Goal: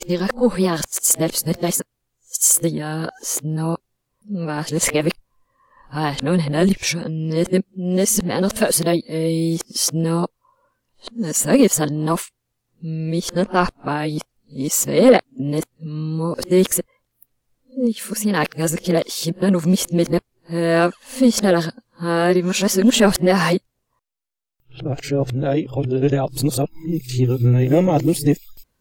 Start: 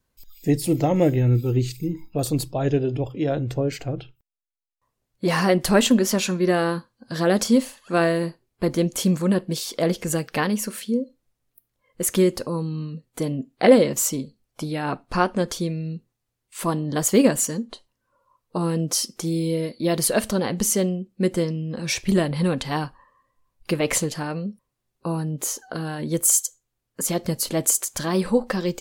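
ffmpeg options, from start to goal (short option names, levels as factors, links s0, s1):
-af "areverse,acontrast=28,volume=0.891"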